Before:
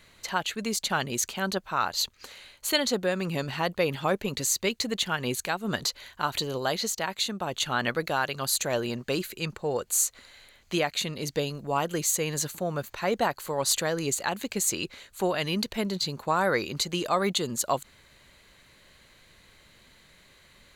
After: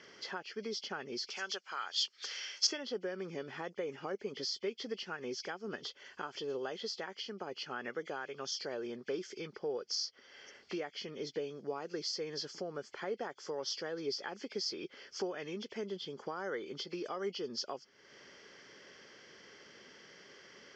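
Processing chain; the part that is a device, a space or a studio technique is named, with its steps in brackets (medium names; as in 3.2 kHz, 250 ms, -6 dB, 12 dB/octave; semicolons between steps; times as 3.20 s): hearing aid with frequency lowering (knee-point frequency compression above 2 kHz 1.5:1; compression 3:1, threshold -46 dBFS, peak gain reduction 19 dB; cabinet simulation 270–5500 Hz, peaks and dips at 410 Hz +7 dB, 650 Hz -5 dB, 1 kHz -7 dB, 2.5 kHz -8 dB, 3.7 kHz -8 dB, 5.4 kHz +8 dB); 1.30–2.67 s: frequency weighting ITU-R 468; trim +4.5 dB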